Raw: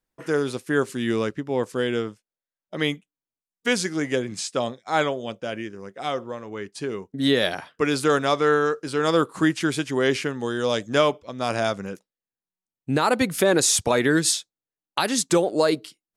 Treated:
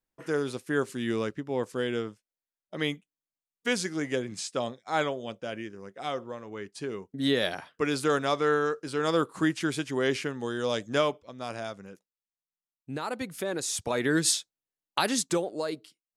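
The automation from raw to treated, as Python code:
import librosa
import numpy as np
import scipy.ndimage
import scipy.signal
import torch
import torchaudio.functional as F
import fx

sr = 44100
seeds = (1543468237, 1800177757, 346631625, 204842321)

y = fx.gain(x, sr, db=fx.line((10.95, -5.5), (11.68, -13.0), (13.63, -13.0), (14.29, -3.0), (15.09, -3.0), (15.57, -12.0)))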